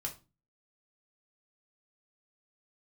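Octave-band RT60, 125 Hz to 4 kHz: 0.50, 0.50, 0.30, 0.30, 0.25, 0.25 seconds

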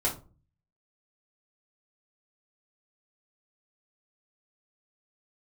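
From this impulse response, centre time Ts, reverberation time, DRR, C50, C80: 20 ms, 0.35 s, −5.0 dB, 10.5 dB, 17.5 dB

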